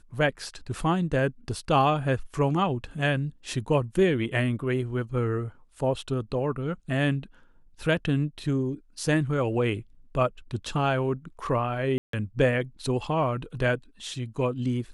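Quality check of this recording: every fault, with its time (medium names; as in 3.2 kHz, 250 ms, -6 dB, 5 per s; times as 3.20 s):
11.98–12.13 s: dropout 153 ms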